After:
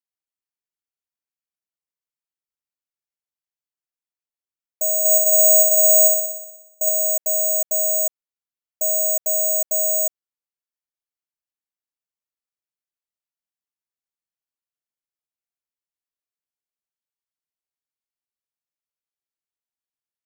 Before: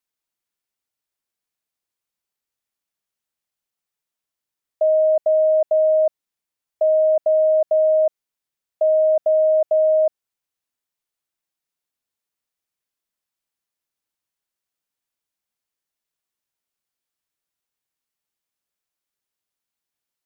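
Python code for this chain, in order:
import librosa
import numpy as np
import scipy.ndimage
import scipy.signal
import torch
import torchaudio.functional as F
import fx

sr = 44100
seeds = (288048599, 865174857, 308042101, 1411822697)

y = fx.room_flutter(x, sr, wall_m=10.4, rt60_s=0.97, at=(4.99, 6.89))
y = (np.kron(scipy.signal.resample_poly(y, 1, 6), np.eye(6)[0]) * 6)[:len(y)]
y = y * librosa.db_to_amplitude(-12.0)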